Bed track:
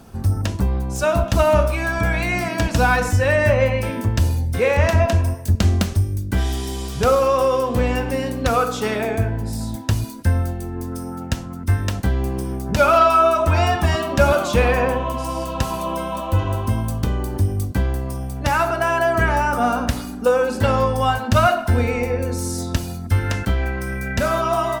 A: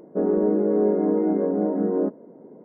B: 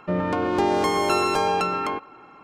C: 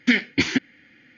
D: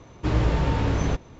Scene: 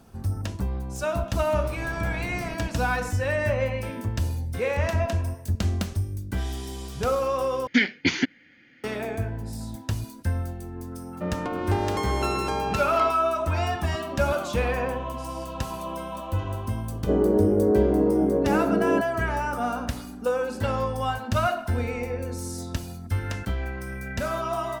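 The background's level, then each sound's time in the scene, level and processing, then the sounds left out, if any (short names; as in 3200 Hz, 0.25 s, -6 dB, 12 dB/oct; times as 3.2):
bed track -8.5 dB
1.39 add D -14.5 dB
7.67 replace with C -2 dB
11.13 add B -6 dB
16.92 add A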